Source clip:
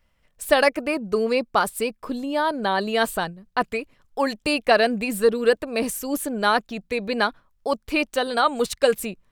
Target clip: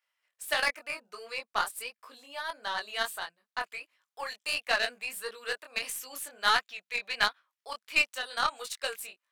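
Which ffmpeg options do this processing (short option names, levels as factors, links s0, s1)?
-filter_complex "[0:a]highpass=1200,asplit=3[s0][s1][s2];[s0]afade=t=out:st=5.73:d=0.02[s3];[s1]adynamicequalizer=threshold=0.0126:dfrequency=2600:dqfactor=0.82:tfrequency=2600:tqfactor=0.82:attack=5:release=100:ratio=0.375:range=3:mode=boostabove:tftype=bell,afade=t=in:st=5.73:d=0.02,afade=t=out:st=8.01:d=0.02[s4];[s2]afade=t=in:st=8.01:d=0.02[s5];[s3][s4][s5]amix=inputs=3:normalize=0,flanger=delay=18.5:depth=6.5:speed=1.5,aeval=exprs='0.316*(cos(1*acos(clip(val(0)/0.316,-1,1)))-cos(1*PI/2))+0.0178*(cos(4*acos(clip(val(0)/0.316,-1,1)))-cos(4*PI/2))+0.0178*(cos(7*acos(clip(val(0)/0.316,-1,1)))-cos(7*PI/2))':c=same"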